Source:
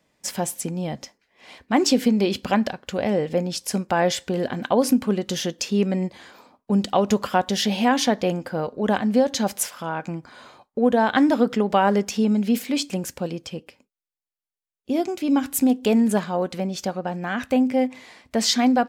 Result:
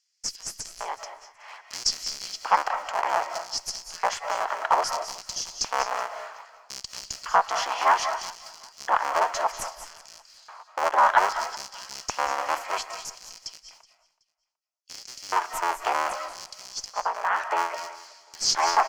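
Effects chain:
sub-harmonics by changed cycles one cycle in 3, inverted
high-pass filter 530 Hz 12 dB per octave
high shelf with overshoot 5,200 Hz +13 dB, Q 1.5
notch filter 3,700 Hz, Q 7.9
in parallel at −1 dB: downward compressor, threshold −27 dBFS, peak gain reduction 20 dB
on the sum: auto-filter high-pass square 0.62 Hz 940–4,900 Hz
harmonic generator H 8 −41 dB, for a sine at 8 dBFS
high-frequency loss of the air 250 metres
repeating echo 374 ms, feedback 28%, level −21.5 dB
on a send at −8 dB: convolution reverb RT60 0.25 s, pre-delay 162 ms
on the sum: level −2 dB

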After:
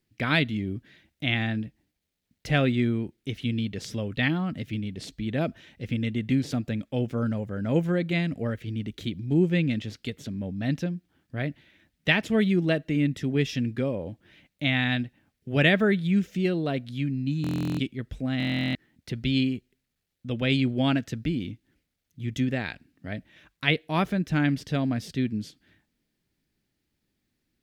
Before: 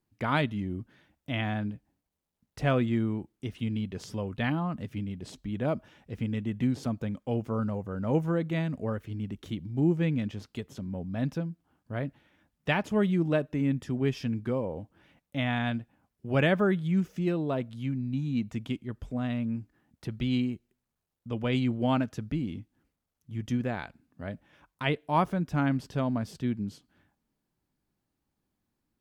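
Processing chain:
change of speed 1.05×
octave-band graphic EQ 1,000/2,000/4,000 Hz −10/+6/+5 dB
buffer that repeats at 0:17.42/0:18.38, samples 1,024, times 15
level +3.5 dB

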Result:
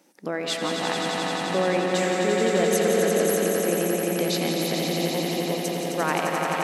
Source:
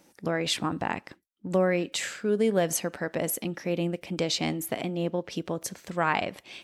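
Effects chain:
Chebyshev high-pass filter 250 Hz, order 2
echo that builds up and dies away 87 ms, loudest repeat 5, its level −6 dB
convolution reverb RT60 2.7 s, pre-delay 143 ms, DRR 4.5 dB

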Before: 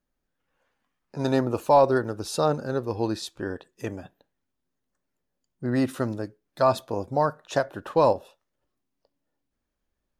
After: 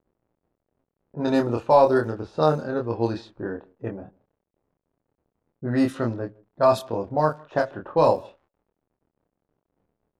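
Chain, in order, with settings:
downward expander −49 dBFS
slap from a distant wall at 27 metres, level −26 dB
surface crackle 100 per second −43 dBFS
double-tracking delay 26 ms −3.5 dB
low-pass that shuts in the quiet parts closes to 490 Hz, open at −16.5 dBFS

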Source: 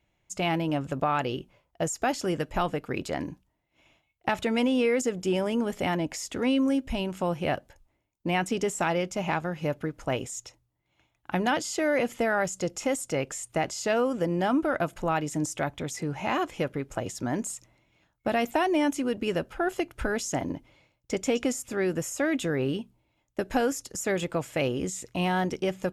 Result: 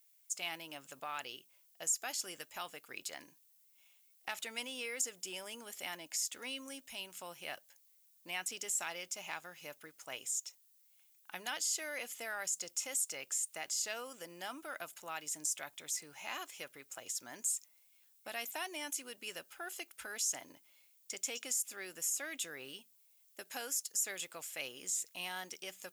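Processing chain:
first difference
background noise violet −69 dBFS
level +1 dB

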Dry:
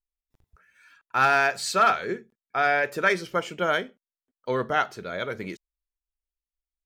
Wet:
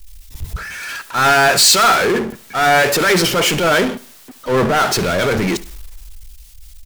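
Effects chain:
transient designer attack −9 dB, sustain +5 dB
power curve on the samples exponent 0.35
in parallel at +1 dB: downward compressor, threshold −27 dBFS, peak gain reduction 12.5 dB
on the sum: repeating echo 71 ms, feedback 40%, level −18 dB
multiband upward and downward expander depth 70%

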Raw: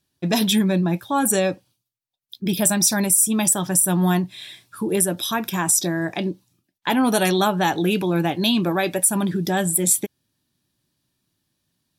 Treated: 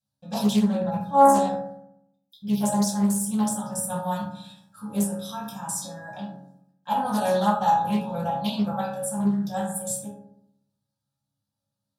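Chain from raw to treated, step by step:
output level in coarse steps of 10 dB
phaser with its sweep stopped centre 850 Hz, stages 4
resonators tuned to a chord C#2 fifth, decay 0.27 s
convolution reverb RT60 0.75 s, pre-delay 3 ms, DRR −8.5 dB
highs frequency-modulated by the lows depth 0.31 ms

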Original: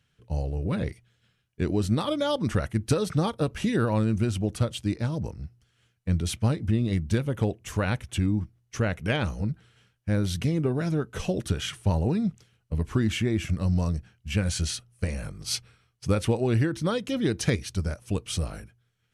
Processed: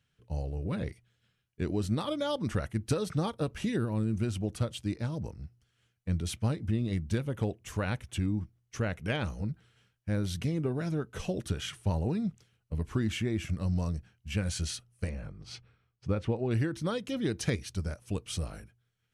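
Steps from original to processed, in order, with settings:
0:03.78–0:04.14: gain on a spectral selection 450–7,600 Hz −7 dB
0:15.09–0:16.51: head-to-tape spacing loss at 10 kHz 22 dB
level −5.5 dB

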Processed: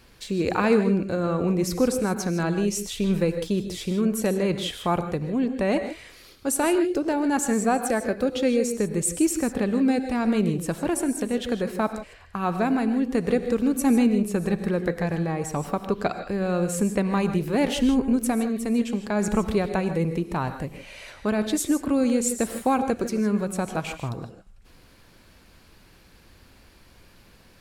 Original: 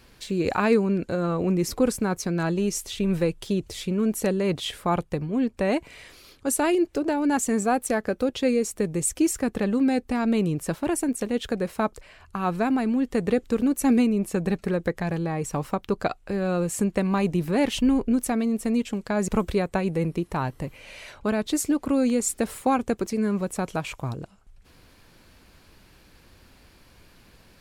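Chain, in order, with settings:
reverb whose tail is shaped and stops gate 180 ms rising, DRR 8.5 dB

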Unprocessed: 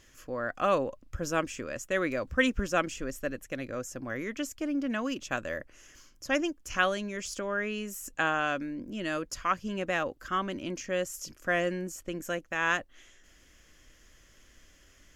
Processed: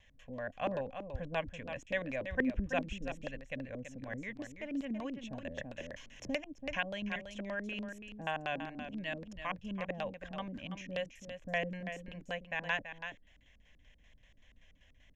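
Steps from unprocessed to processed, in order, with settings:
high-shelf EQ 6,100 Hz −5.5 dB
phaser with its sweep stopped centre 1,300 Hz, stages 6
auto-filter low-pass square 5.2 Hz 300–4,400 Hz
pitch vibrato 1 Hz 17 cents
single-tap delay 331 ms −9 dB
0:05.58–0:07.16: multiband upward and downward compressor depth 70%
level −3 dB

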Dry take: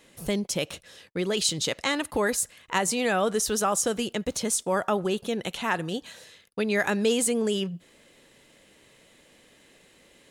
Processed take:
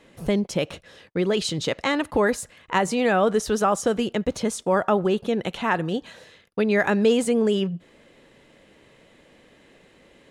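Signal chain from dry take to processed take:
low-pass filter 1,800 Hz 6 dB per octave
level +5.5 dB

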